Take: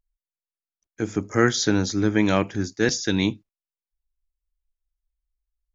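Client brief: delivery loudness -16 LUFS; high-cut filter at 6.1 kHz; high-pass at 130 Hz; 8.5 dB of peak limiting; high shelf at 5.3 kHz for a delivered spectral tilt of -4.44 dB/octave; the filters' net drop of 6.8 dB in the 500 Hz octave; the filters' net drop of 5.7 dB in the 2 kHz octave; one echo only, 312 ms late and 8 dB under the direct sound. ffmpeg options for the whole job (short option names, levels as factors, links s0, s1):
-af "highpass=130,lowpass=6100,equalizer=f=500:t=o:g=-9,equalizer=f=2000:t=o:g=-6,highshelf=f=5300:g=-6.5,alimiter=limit=0.106:level=0:latency=1,aecho=1:1:312:0.398,volume=5.31"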